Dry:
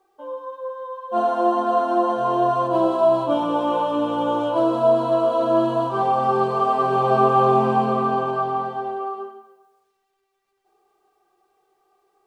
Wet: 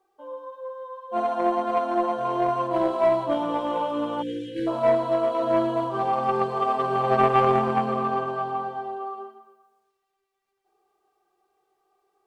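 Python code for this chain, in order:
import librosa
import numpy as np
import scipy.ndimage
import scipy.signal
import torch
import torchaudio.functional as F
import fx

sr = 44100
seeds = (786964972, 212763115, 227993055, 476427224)

y = fx.cheby_harmonics(x, sr, harmonics=(3,), levels_db=(-16,), full_scale_db=-5.5)
y = fx.echo_feedback(y, sr, ms=117, feedback_pct=50, wet_db=-14.5)
y = fx.spec_erase(y, sr, start_s=4.22, length_s=0.45, low_hz=520.0, high_hz=1500.0)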